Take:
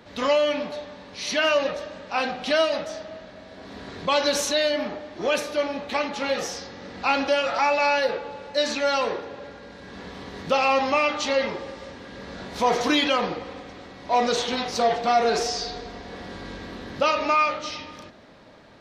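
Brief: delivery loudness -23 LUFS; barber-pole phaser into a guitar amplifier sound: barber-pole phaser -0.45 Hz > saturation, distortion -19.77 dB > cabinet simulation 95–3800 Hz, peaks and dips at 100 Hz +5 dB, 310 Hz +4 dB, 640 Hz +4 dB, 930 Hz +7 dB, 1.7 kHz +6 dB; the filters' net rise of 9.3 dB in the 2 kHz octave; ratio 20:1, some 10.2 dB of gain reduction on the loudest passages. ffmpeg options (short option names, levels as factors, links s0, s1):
-filter_complex "[0:a]equalizer=f=2000:t=o:g=8.5,acompressor=threshold=0.0631:ratio=20,asplit=2[s0][s1];[s1]afreqshift=-0.45[s2];[s0][s2]amix=inputs=2:normalize=1,asoftclip=threshold=0.075,highpass=95,equalizer=f=100:t=q:w=4:g=5,equalizer=f=310:t=q:w=4:g=4,equalizer=f=640:t=q:w=4:g=4,equalizer=f=930:t=q:w=4:g=7,equalizer=f=1700:t=q:w=4:g=6,lowpass=f=3800:w=0.5412,lowpass=f=3800:w=1.3066,volume=2.51"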